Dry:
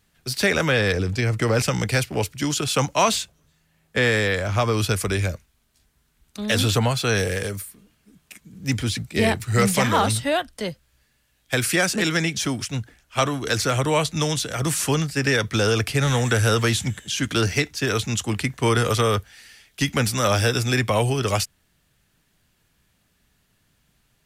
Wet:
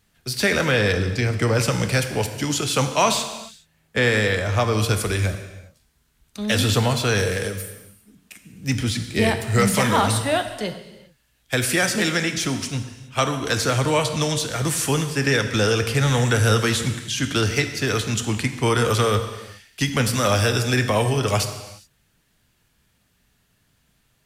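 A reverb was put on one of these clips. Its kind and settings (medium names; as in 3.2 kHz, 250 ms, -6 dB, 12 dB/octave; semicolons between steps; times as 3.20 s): gated-style reverb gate 440 ms falling, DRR 7 dB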